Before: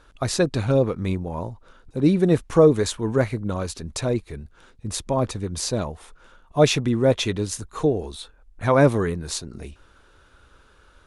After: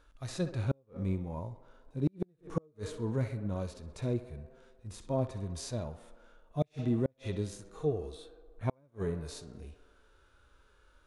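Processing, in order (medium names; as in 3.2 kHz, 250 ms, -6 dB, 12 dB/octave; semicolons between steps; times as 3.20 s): tape echo 64 ms, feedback 84%, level -19 dB, low-pass 3 kHz; harmonic-percussive split percussive -17 dB; inverted gate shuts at -11 dBFS, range -40 dB; trim -6.5 dB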